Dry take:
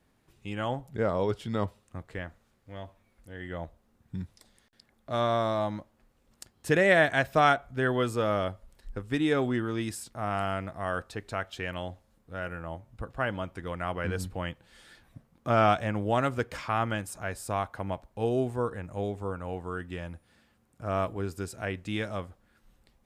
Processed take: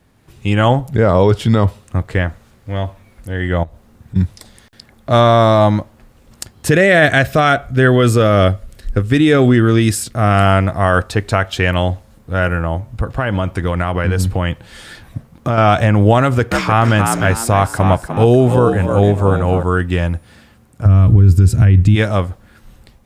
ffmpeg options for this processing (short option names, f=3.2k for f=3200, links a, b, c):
-filter_complex "[0:a]asettb=1/sr,asplit=3[a][b][c];[a]atrim=end=3.634[d];[b]atrim=start=3.63:end=4.16,asetpts=PTS-STARTPTS,afade=t=in:d=0.004:c=qsin,afade=t=out:st=0.526:d=0.004:c=qsin,acompressor=threshold=-52dB:ratio=3:attack=3.2:release=140:knee=1:detection=peak[e];[c]atrim=start=4.156[f];[d][e]acrossfade=d=0.004:c1=hsin:c2=qsin[g];[g][f]acrossfade=d=0.004:c1=qsin:c2=hsin,asettb=1/sr,asplit=3[h][i][j];[h]atrim=end=6.714[k];[i]atrim=start=6.71:end=10.46,asetpts=PTS-STARTPTS,afade=t=in:d=0.004:c=qsin,afade=t=out:st=3.746:d=0.004:c=qsin,equalizer=f=910:t=o:w=0.38:g=-10.5[l];[j]atrim=start=10.456[m];[k][l]acrossfade=d=0.004:c1=hsin:c2=qsin[n];[n][m]acrossfade=d=0.004:c1=qsin:c2=hsin,asettb=1/sr,asplit=3[o][p][q];[o]atrim=end=12.624[r];[p]atrim=start=12.62:end=15.58,asetpts=PTS-STARTPTS,afade=t=in:d=0.004:c=qsin,afade=t=out:st=2.956:d=0.004:c=qsin,acompressor=threshold=-33dB:ratio=5:attack=3.2:release=140:knee=1:detection=peak[s];[q]atrim=start=15.576[t];[r][s]acrossfade=d=0.004:c1=hsin:c2=qsin[u];[u][t]acrossfade=d=0.004:c1=qsin:c2=hsin,asettb=1/sr,asplit=3[v][w][x];[v]atrim=end=16.214[y];[w]atrim=start=16.21:end=19.63,asetpts=PTS-STARTPTS,afade=t=in:d=0.004:c=qsin,afade=t=out:st=3.416:d=0.004:c=qsin,asplit=5[z][aa][ab][ac][ad];[aa]adelay=300,afreqshift=59,volume=-9dB[ae];[ab]adelay=600,afreqshift=118,volume=-18.4dB[af];[ac]adelay=900,afreqshift=177,volume=-27.7dB[ag];[ad]adelay=1200,afreqshift=236,volume=-37.1dB[ah];[z][ae][af][ag][ah]amix=inputs=5:normalize=0,atrim=end_sample=150822[ai];[x]atrim=start=19.626[aj];[y][ai]acrossfade=d=0.004:c1=hsin:c2=qsin[ak];[ak][aj]acrossfade=d=0.004:c1=qsin:c2=hsin,asplit=3[al][am][an];[al]afade=t=out:st=20.85:d=0.02[ao];[am]asubboost=boost=9:cutoff=200,afade=t=in:st=20.85:d=0.02,afade=t=out:st=21.94:d=0.02[ap];[an]afade=t=in:st=21.94:d=0.02[aq];[ao][ap][aq]amix=inputs=3:normalize=0,equalizer=f=95:w=1:g=6,dynaudnorm=f=120:g=5:m=7dB,alimiter=level_in=12.5dB:limit=-1dB:release=50:level=0:latency=1,volume=-1dB"